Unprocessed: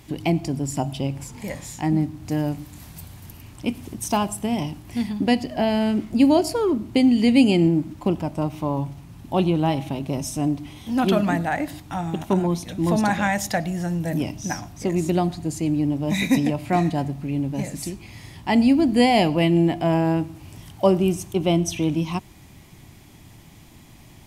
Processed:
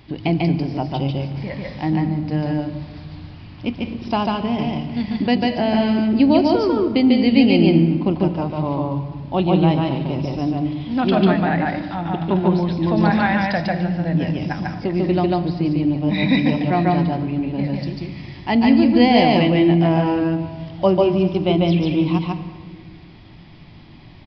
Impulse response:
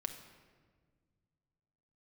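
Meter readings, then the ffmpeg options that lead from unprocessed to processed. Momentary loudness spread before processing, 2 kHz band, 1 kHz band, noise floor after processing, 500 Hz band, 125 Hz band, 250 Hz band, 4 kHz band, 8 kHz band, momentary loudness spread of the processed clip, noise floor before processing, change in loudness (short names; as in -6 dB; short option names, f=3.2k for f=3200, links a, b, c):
14 LU, +3.5 dB, +3.5 dB, -42 dBFS, +4.0 dB, +4.5 dB, +4.0 dB, +3.5 dB, under -20 dB, 13 LU, -47 dBFS, +3.5 dB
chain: -filter_complex "[0:a]asplit=2[a][b];[1:a]atrim=start_sample=2205,adelay=145[c];[b][c]afir=irnorm=-1:irlink=0,volume=0dB[d];[a][d]amix=inputs=2:normalize=0,aresample=11025,aresample=44100,volume=1dB"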